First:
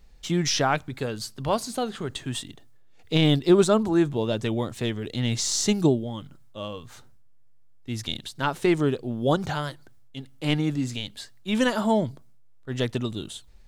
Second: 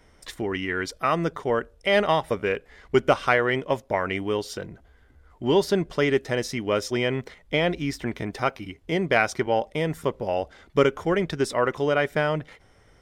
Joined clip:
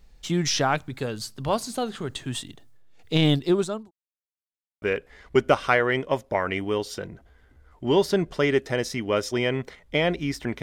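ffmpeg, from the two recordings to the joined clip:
-filter_complex "[0:a]apad=whole_dur=10.62,atrim=end=10.62,asplit=2[s0][s1];[s0]atrim=end=3.91,asetpts=PTS-STARTPTS,afade=t=out:st=3.3:d=0.61[s2];[s1]atrim=start=3.91:end=4.82,asetpts=PTS-STARTPTS,volume=0[s3];[1:a]atrim=start=2.41:end=8.21,asetpts=PTS-STARTPTS,afade=t=in:d=0.004:c=hsin[s4];[s2][s3][s4]concat=n=3:v=0:a=1"

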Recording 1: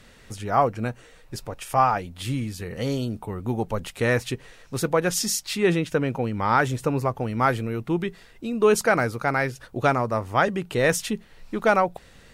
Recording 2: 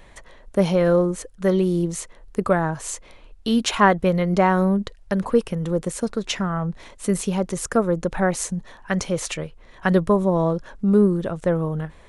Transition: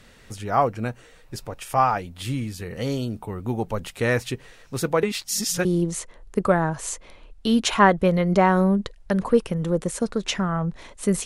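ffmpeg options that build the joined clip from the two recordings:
-filter_complex "[0:a]apad=whole_dur=11.25,atrim=end=11.25,asplit=2[s0][s1];[s0]atrim=end=5.032[s2];[s1]atrim=start=5.028:end=5.652,asetpts=PTS-STARTPTS,areverse[s3];[1:a]atrim=start=1.658:end=7.26[s4];[s2][s3]acrossfade=d=0.004:c1=hsin:c2=hsin[s5];[s5][s4]acrossfade=d=0.004:c1=hsin:c2=hsin"

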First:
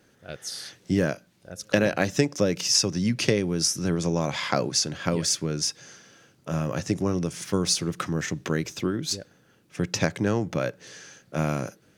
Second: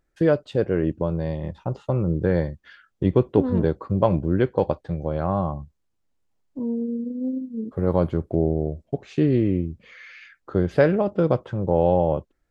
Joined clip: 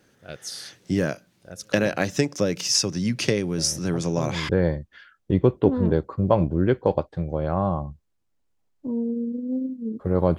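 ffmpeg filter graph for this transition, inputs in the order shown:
-filter_complex "[1:a]asplit=2[s0][s1];[0:a]apad=whole_dur=10.38,atrim=end=10.38,atrim=end=4.492[s2];[s1]atrim=start=2.208:end=8.1[s3];[s0]atrim=start=1.3:end=2.21,asetpts=PTS-STARTPTS,volume=0.376,afade=t=in:d=0.004:c=hsin,afade=t=out:st=0.906:d=0.004:c=hsin,adelay=3580[s4];[s2][s3]acrossfade=d=0.004:c1=hsin:c2=hsin[s5];[s5][s4]amix=inputs=2:normalize=0"

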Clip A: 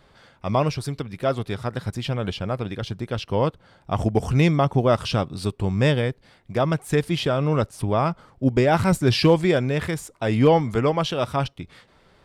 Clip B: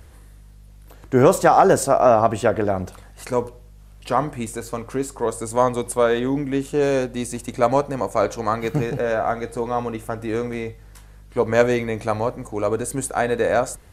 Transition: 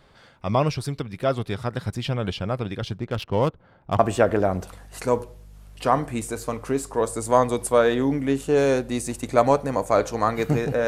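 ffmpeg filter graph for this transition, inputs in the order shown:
-filter_complex "[0:a]asettb=1/sr,asplit=3[s0][s1][s2];[s0]atrim=end=2.984[s3];[s1]atrim=start=2.98:end=3.99,asetpts=PTS-STARTPTS,afade=t=in:d=0.004:c=qsin,afade=t=out:st=1.006:d=0.004:c=qsin,adynamicsmooth=sensitivity=7:basefreq=1900[s4];[s2]atrim=start=3.986[s5];[s3][s4]acrossfade=d=0.004:c1=hsin:c2=qsin[s6];[s6][s5]acrossfade=d=0.004:c1=qsin:c2=hsin,apad=whole_dur=10.87,atrim=end=10.87,atrim=end=3.992[s7];[1:a]atrim=start=2.238:end=9.12[s8];[s7][s8]acrossfade=d=0.004:c1=hsin:c2=hsin"

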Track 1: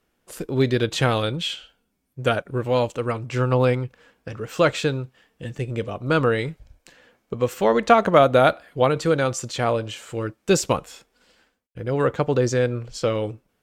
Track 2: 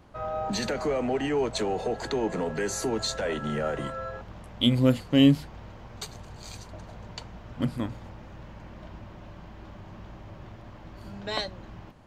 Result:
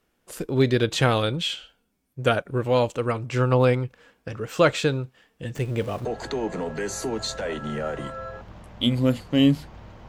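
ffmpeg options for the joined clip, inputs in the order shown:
-filter_complex "[0:a]asettb=1/sr,asplit=3[s0][s1][s2];[s0]atrim=end=5.554[s3];[s1]atrim=start=5.55:end=6.05,asetpts=PTS-STARTPTS,afade=t=in:d=0.004:c=qsin,afade=t=out:st=0.496:d=0.004:c=qsin,aeval=exprs='val(0)+0.5*0.0133*sgn(val(0))':c=same[s4];[s2]atrim=start=6.046[s5];[s3][s4]acrossfade=d=0.004:c1=hsin:c2=qsin[s6];[s6][s5]acrossfade=d=0.004:c1=qsin:c2=hsin,apad=whole_dur=10.08,atrim=end=10.08,atrim=end=6.052[s7];[1:a]atrim=start=1.848:end=5.88[s8];[s7][s8]acrossfade=d=0.004:c1=hsin:c2=hsin"

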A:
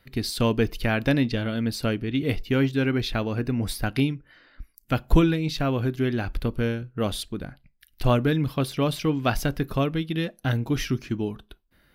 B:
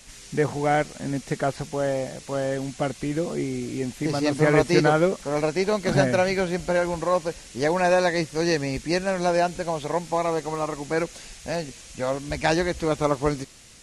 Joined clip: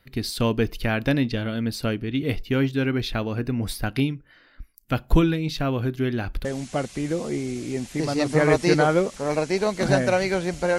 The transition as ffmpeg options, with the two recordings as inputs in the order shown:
-filter_complex "[0:a]apad=whole_dur=10.78,atrim=end=10.78,atrim=end=6.452[s0];[1:a]atrim=start=2.508:end=6.84[s1];[s0][s1]acrossfade=d=0.004:c1=hsin:c2=hsin"

